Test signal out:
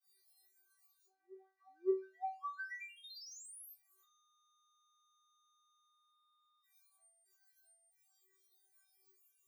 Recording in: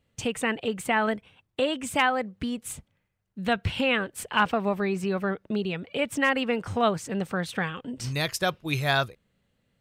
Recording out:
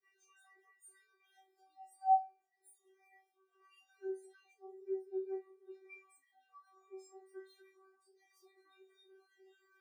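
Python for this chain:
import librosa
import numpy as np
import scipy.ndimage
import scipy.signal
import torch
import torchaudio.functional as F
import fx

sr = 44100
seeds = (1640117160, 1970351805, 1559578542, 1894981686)

y = np.sign(x) * np.sqrt(np.mean(np.square(x)))
y = scipy.signal.sosfilt(scipy.signal.cheby1(8, 1.0, 260.0, 'highpass', fs=sr, output='sos'), y)
y = fx.notch(y, sr, hz=3000.0, q=5.0)
y = fx.stiff_resonator(y, sr, f0_hz=380.0, decay_s=0.77, stiffness=0.002)
y = fx.spectral_expand(y, sr, expansion=2.5)
y = y * librosa.db_to_amplitude(13.5)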